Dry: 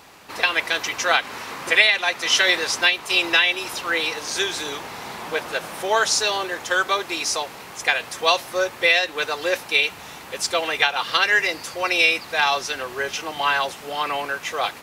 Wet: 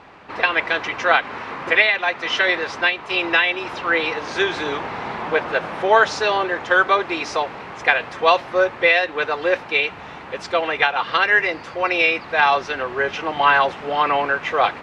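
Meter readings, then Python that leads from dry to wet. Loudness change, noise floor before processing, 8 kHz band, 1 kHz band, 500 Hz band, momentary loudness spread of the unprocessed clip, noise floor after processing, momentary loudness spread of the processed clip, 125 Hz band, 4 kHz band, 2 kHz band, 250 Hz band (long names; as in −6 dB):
+1.5 dB, −40 dBFS, −14.5 dB, +5.5 dB, +5.0 dB, 11 LU, −37 dBFS, 9 LU, +5.5 dB, −4.5 dB, +2.0 dB, +5.0 dB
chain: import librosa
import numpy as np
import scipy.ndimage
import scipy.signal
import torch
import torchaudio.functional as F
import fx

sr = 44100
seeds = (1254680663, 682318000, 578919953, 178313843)

y = fx.rider(x, sr, range_db=3, speed_s=2.0)
y = scipy.signal.sosfilt(scipy.signal.butter(2, 2200.0, 'lowpass', fs=sr, output='sos'), y)
y = F.gain(torch.from_numpy(y), 4.5).numpy()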